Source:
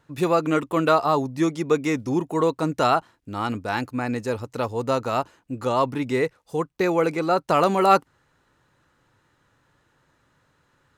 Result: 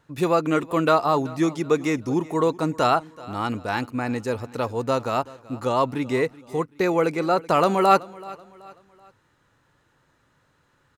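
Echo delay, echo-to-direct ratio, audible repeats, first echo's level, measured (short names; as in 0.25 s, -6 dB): 0.38 s, -20.0 dB, 2, -20.5 dB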